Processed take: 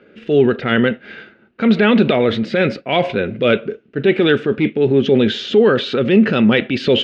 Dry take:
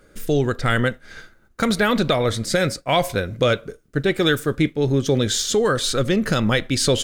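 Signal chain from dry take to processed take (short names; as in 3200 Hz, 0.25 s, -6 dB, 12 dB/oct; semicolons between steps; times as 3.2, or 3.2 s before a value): hard clip -9 dBFS, distortion -28 dB; transient shaper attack -6 dB, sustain +4 dB; speaker cabinet 160–3300 Hz, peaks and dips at 220 Hz +8 dB, 400 Hz +7 dB, 1100 Hz -6 dB, 2700 Hz +9 dB; gain +4 dB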